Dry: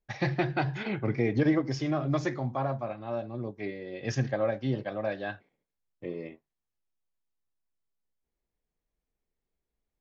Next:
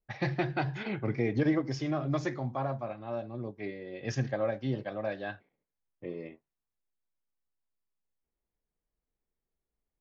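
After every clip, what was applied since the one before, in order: low-pass opened by the level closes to 2000 Hz, open at -26.5 dBFS; gain -2.5 dB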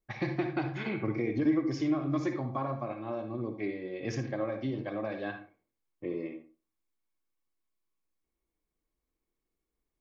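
compressor 3:1, threshold -33 dBFS, peak gain reduction 8.5 dB; small resonant body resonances 320/1100/2200 Hz, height 9 dB, ringing for 35 ms; reverb RT60 0.35 s, pre-delay 54 ms, DRR 6.5 dB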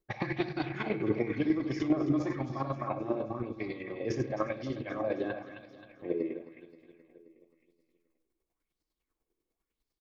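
chopper 10 Hz, depth 60%, duty 25%; on a send: feedback echo 0.264 s, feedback 59%, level -12 dB; on the sum: LFO bell 0.96 Hz 360–4900 Hz +11 dB; gain +2 dB

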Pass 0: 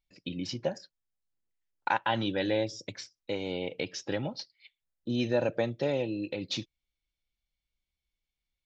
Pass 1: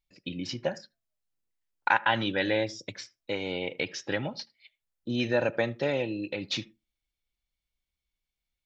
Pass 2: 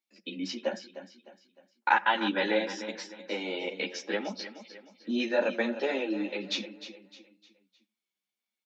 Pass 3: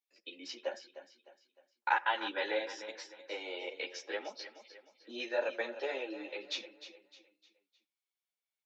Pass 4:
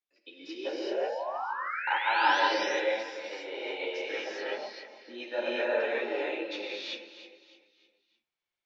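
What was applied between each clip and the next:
dynamic EQ 1800 Hz, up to +8 dB, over -48 dBFS, Q 0.88; on a send at -21.5 dB: reverb RT60 0.20 s, pre-delay 75 ms
Chebyshev high-pass 190 Hz, order 8; feedback echo 0.305 s, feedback 40%, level -12.5 dB; ensemble effect; gain +3 dB
HPF 380 Hz 24 dB/oct; gain -6 dB
painted sound rise, 0.48–2.4, 310–6200 Hz -41 dBFS; air absorption 150 m; non-linear reverb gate 0.41 s rising, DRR -7 dB

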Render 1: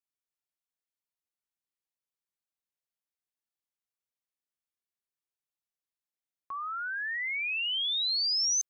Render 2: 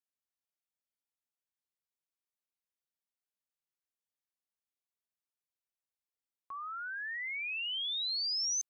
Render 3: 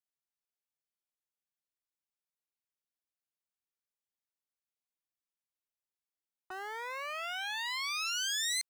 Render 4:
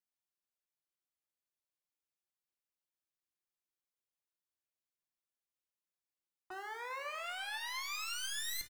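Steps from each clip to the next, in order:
de-hum 166.6 Hz, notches 2; gain -5.5 dB
cycle switcher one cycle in 3, inverted
one-sided fold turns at -36.5 dBFS; feedback echo 0.239 s, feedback 58%, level -19.5 dB; reverb RT60 0.45 s, pre-delay 3 ms, DRR 4 dB; gain -4.5 dB

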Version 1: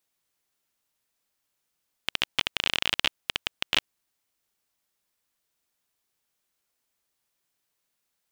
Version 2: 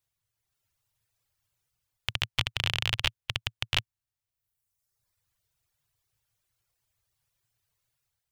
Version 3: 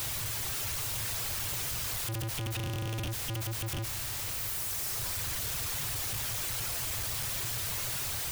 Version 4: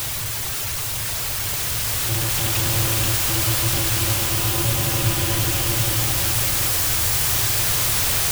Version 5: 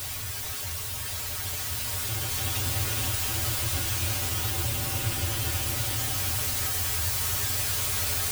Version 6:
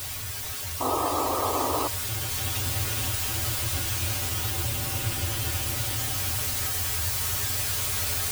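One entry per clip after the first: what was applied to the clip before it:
reverb removal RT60 1.2 s; resonant low shelf 160 Hz +12 dB, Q 3; AGC gain up to 6.5 dB; gain -5 dB
infinite clipping; gain +4.5 dB
bloom reverb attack 2.4 s, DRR -4.5 dB; gain +8.5 dB
resonator 85 Hz, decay 0.15 s, harmonics odd, mix 90%
painted sound noise, 0.8–1.88, 250–1300 Hz -27 dBFS

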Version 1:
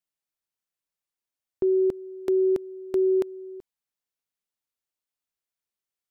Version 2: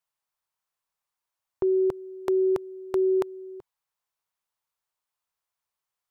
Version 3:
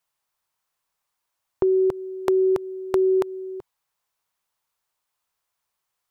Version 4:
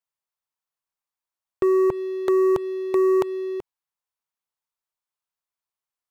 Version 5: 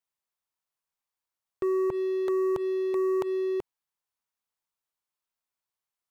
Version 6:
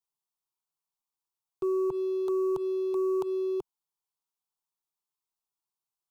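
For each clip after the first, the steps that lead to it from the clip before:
ten-band EQ 125 Hz +3 dB, 250 Hz -9 dB, 1000 Hz +10 dB; gain +1.5 dB
compressor, threshold -24 dBFS, peak gain reduction 3.5 dB; gain +7 dB
sample leveller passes 3; gain -6.5 dB
limiter -23.5 dBFS, peak gain reduction 9 dB
fixed phaser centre 370 Hz, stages 8; gain -1.5 dB

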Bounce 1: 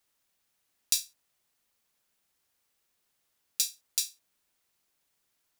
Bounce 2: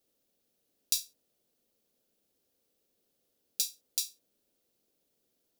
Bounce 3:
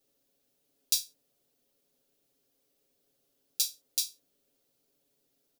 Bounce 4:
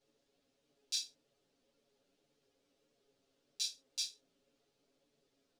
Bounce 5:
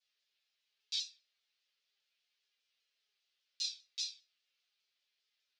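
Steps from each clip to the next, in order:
graphic EQ 250/500/1000/2000/8000 Hz +8/+11/-9/-8/-4 dB
comb 7.2 ms, depth 80%
limiter -15 dBFS, peak gain reduction 10 dB; air absorption 100 m; ensemble effect; gain +6 dB
Butterworth band-pass 3200 Hz, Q 0.89; shoebox room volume 400 m³, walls furnished, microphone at 1.4 m; shaped vibrato saw down 5 Hz, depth 100 cents

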